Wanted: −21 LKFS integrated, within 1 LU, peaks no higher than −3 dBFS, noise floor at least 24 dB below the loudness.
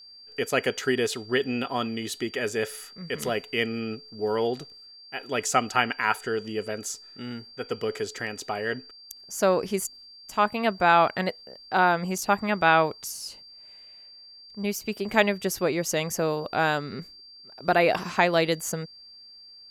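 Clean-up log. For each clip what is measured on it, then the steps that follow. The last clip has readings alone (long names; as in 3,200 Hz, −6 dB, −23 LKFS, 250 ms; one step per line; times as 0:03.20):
interfering tone 4,700 Hz; level of the tone −46 dBFS; integrated loudness −26.5 LKFS; sample peak −5.5 dBFS; target loudness −21.0 LKFS
→ notch filter 4,700 Hz, Q 30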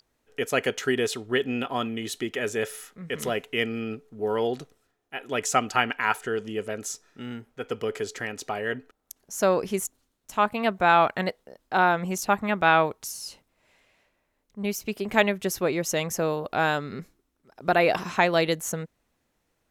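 interfering tone none found; integrated loudness −26.0 LKFS; sample peak −5.5 dBFS; target loudness −21.0 LKFS
→ level +5 dB
brickwall limiter −3 dBFS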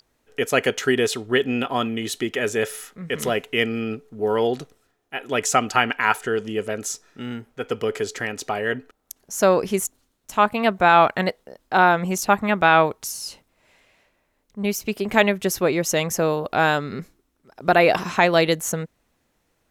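integrated loudness −21.5 LKFS; sample peak −3.0 dBFS; background noise floor −70 dBFS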